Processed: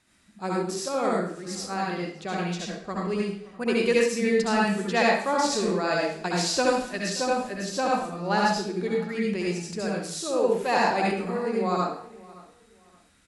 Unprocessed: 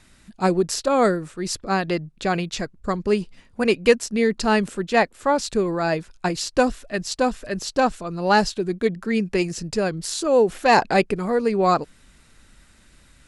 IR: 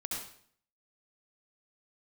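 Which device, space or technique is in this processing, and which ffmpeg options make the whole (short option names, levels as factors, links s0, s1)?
far laptop microphone: -filter_complex "[0:a]asettb=1/sr,asplit=3[s0][s1][s2];[s0]atrim=end=4.884[s3];[s1]atrim=start=4.88:end=7.1,asetpts=PTS-STARTPTS,afade=t=in:d=0.004:c=qsin,afade=t=out:st=2.216:d=0.004:c=qsin,equalizer=f=4800:w=0.5:g=5[s4];[s2]atrim=start=7.096[s5];[s3][s4]acrossfade=d=0.004:c1=hsin:c2=qsin[s6];[s6][s5]acrossfade=d=0.004:c1=qsin:c2=hsin,asplit=2[s7][s8];[s8]adelay=571,lowpass=f=3300:p=1,volume=0.0891,asplit=2[s9][s10];[s10]adelay=571,lowpass=f=3300:p=1,volume=0.29[s11];[s7][s9][s11]amix=inputs=3:normalize=0[s12];[1:a]atrim=start_sample=2205[s13];[s12][s13]afir=irnorm=-1:irlink=0,highpass=f=160:p=1,dynaudnorm=f=720:g=9:m=3.76,volume=0.398"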